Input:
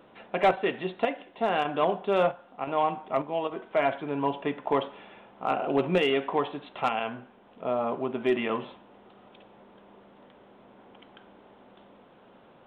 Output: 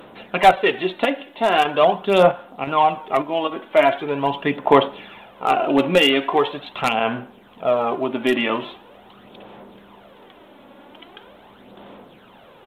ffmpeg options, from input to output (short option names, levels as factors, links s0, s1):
-af "aemphasis=mode=production:type=75fm,aresample=32000,aresample=44100,aphaser=in_gain=1:out_gain=1:delay=3.6:decay=0.47:speed=0.42:type=sinusoidal,volume=2.37"